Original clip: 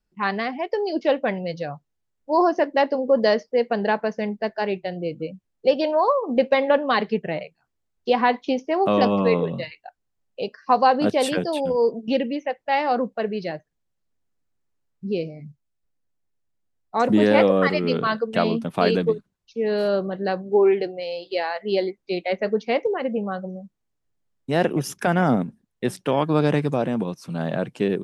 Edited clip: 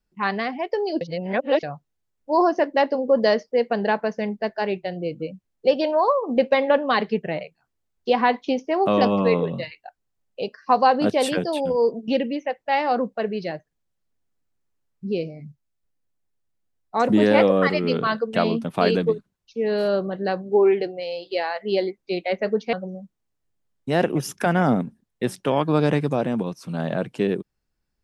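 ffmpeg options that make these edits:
-filter_complex "[0:a]asplit=4[a][b][c][d];[a]atrim=end=1.012[e];[b]atrim=start=1.008:end=1.632,asetpts=PTS-STARTPTS,areverse[f];[c]atrim=start=1.628:end=22.732[g];[d]atrim=start=23.338[h];[e][f]acrossfade=d=0.004:c1=hsin:c2=hsin[i];[i][g]acrossfade=d=0.004:c1=hsin:c2=hsin[j];[j][h]acrossfade=d=0.004:c1=hsin:c2=hsin"

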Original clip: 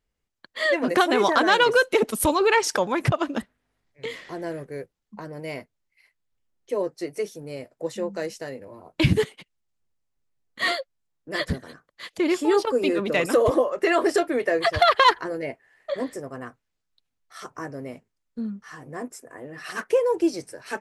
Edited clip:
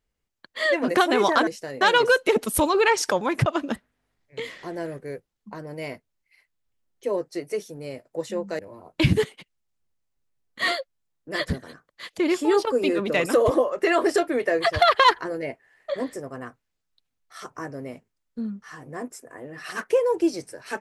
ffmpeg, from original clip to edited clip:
-filter_complex "[0:a]asplit=4[a][b][c][d];[a]atrim=end=1.472[e];[b]atrim=start=8.248:end=8.592[f];[c]atrim=start=1.468:end=8.252[g];[d]atrim=start=8.588[h];[e][f]acrossfade=d=0.004:c1=hsin:c2=hsin[i];[i][g]acrossfade=d=0.004:c1=hsin:c2=hsin[j];[j][h]acrossfade=d=0.004:c1=hsin:c2=hsin"

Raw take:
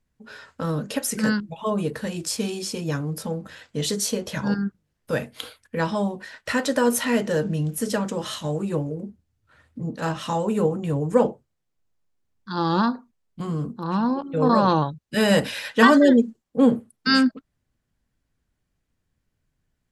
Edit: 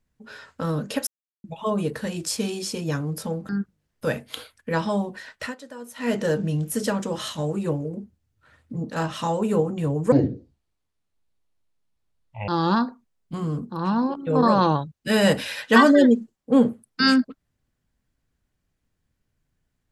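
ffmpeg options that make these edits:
-filter_complex "[0:a]asplit=8[a][b][c][d][e][f][g][h];[a]atrim=end=1.07,asetpts=PTS-STARTPTS,afade=t=out:st=1.066:d=0.004:c=hsin[i];[b]atrim=start=1.07:end=1.44,asetpts=PTS-STARTPTS,volume=0[j];[c]atrim=start=1.44:end=3.492,asetpts=PTS-STARTPTS,afade=t=in:d=0.004:c=hsin[k];[d]atrim=start=4.548:end=6.61,asetpts=PTS-STARTPTS,afade=t=out:st=1.862:d=0.2:silence=0.112202[l];[e]atrim=start=6.61:end=7.01,asetpts=PTS-STARTPTS,volume=-19dB[m];[f]atrim=start=7.01:end=11.184,asetpts=PTS-STARTPTS,afade=t=in:d=0.2:silence=0.112202[n];[g]atrim=start=11.18:end=12.55,asetpts=PTS-STARTPTS,asetrate=25578,aresample=44100,atrim=end_sample=104167,asetpts=PTS-STARTPTS[o];[h]atrim=start=12.546[p];[i][j][k]concat=n=3:v=0:a=1[q];[l][m][n]concat=n=3:v=0:a=1[r];[q][r]acrossfade=d=0.004:c1=hsin:c2=hsin[s];[s][o]acrossfade=d=0.004:c1=hsin:c2=hsin[t];[t][p]acrossfade=d=0.004:c1=hsin:c2=hsin"

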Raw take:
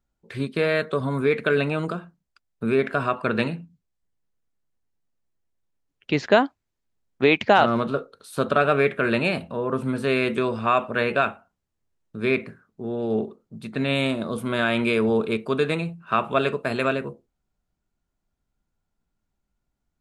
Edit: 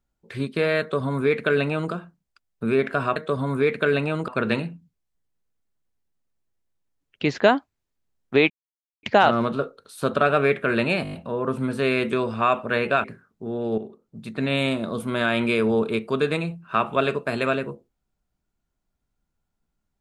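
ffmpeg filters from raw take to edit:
-filter_complex "[0:a]asplit=11[a][b][c][d][e][f][g][h][i][j][k];[a]atrim=end=3.162[l];[b]atrim=start=0.798:end=1.922[m];[c]atrim=start=3.158:end=7.38,asetpts=PTS-STARTPTS,afade=t=out:st=4.218:d=0.004:c=hsin,apad=pad_dur=0.53[n];[d]atrim=start=7.38:end=9.402,asetpts=PTS-STARTPTS,afade=t=in:d=0.004:c=hsin[o];[e]atrim=start=9.378:end=9.402[p];[f]atrim=start=9.378:end=9.402[q];[g]atrim=start=9.378:end=9.402[r];[h]atrim=start=9.378:end=9.402[s];[i]atrim=start=9.378:end=11.292[t];[j]atrim=start=12.418:end=13.16,asetpts=PTS-STARTPTS,afade=t=out:st=0.738:d=0.004:c=hsin:silence=0.251189[u];[k]atrim=start=13.16,asetpts=PTS-STARTPTS,afade=t=in:d=0.42:silence=0.251189[v];[l][m]acrossfade=d=0.004:c1=hsin:c2=hsin[w];[n][o]concat=n=2:v=0:a=1[x];[w][x]acrossfade=d=0.004:c1=hsin:c2=hsin[y];[y][p]acrossfade=d=0.004:c1=hsin:c2=hsin[z];[z][q]acrossfade=d=0.004:c1=hsin:c2=hsin[aa];[aa][r]acrossfade=d=0.004:c1=hsin:c2=hsin[ab];[ab][s]acrossfade=d=0.004:c1=hsin:c2=hsin[ac];[ac][t]acrossfade=d=0.004:c1=hsin:c2=hsin[ad];[u][v]concat=n=2:v=0:a=1[ae];[ad][ae]acrossfade=d=0.004:c1=hsin:c2=hsin"

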